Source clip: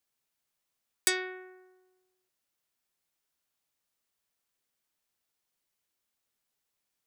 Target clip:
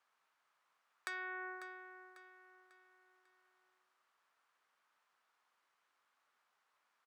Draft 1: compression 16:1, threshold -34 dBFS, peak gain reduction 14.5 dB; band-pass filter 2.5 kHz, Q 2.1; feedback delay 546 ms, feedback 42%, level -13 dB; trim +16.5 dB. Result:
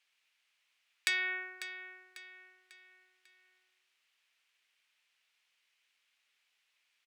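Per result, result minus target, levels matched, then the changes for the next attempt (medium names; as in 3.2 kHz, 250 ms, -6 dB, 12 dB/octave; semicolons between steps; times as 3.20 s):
1 kHz band -14.0 dB; compression: peak gain reduction -9.5 dB
change: band-pass filter 1.2 kHz, Q 2.1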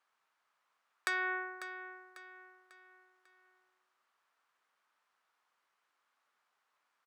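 compression: peak gain reduction -9.5 dB
change: compression 16:1, threshold -44 dBFS, peak gain reduction 23.5 dB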